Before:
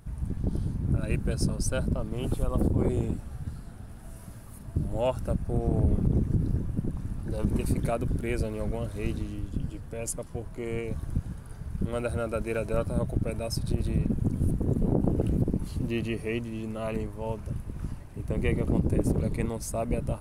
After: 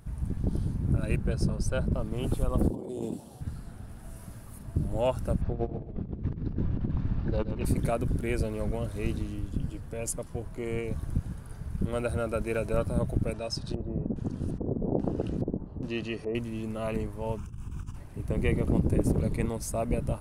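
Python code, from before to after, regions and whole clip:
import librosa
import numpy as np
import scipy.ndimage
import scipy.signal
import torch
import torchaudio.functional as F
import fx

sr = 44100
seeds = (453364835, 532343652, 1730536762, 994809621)

y = fx.chain(x, sr, fx.high_shelf(hz=5500.0, db=-11.0),
    fx.notch(hz=270.0, q=6.5), at=(1.16, 1.94))
y = fx.chain(y, sr, fx.highpass(hz=240.0, slope=12),
    fx.band_shelf(hz=1700.0, db=-13.0, octaves=1.3),
    fx.over_compress(threshold_db=-35.0, ratio=-1.0), at=(2.7, 3.41))
y = fx.chain(y, sr, fx.lowpass(hz=4400.0, slope=24),
    fx.over_compress(threshold_db=-30.0, ratio=-0.5),
    fx.echo_feedback(ms=127, feedback_pct=27, wet_db=-11.0), at=(5.41, 7.65))
y = fx.chain(y, sr, fx.low_shelf(hz=210.0, db=-9.0),
    fx.notch(hz=2200.0, q=7.3),
    fx.filter_lfo_lowpass(shape='square', hz=1.2, low_hz=690.0, high_hz=5600.0, q=1.2), at=(13.33, 16.35))
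y = fx.chain(y, sr, fx.high_shelf(hz=5500.0, db=7.0),
    fx.over_compress(threshold_db=-36.0, ratio=-0.5),
    fx.fixed_phaser(hz=2900.0, stages=8), at=(17.37, 17.96))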